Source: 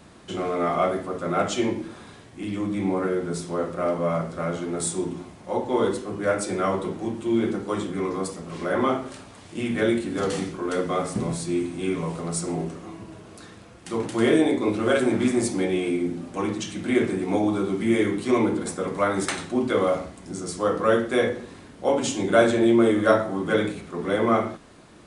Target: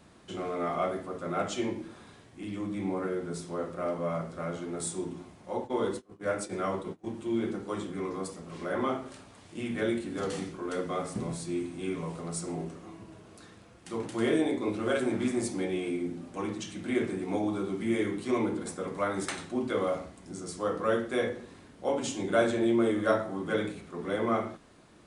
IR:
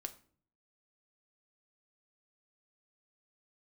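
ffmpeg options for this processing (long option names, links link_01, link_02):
-filter_complex "[0:a]asplit=3[link_01][link_02][link_03];[link_01]afade=type=out:start_time=5.57:duration=0.02[link_04];[link_02]agate=range=-24dB:threshold=-28dB:ratio=16:detection=peak,afade=type=in:start_time=5.57:duration=0.02,afade=type=out:start_time=7.12:duration=0.02[link_05];[link_03]afade=type=in:start_time=7.12:duration=0.02[link_06];[link_04][link_05][link_06]amix=inputs=3:normalize=0,volume=-7.5dB"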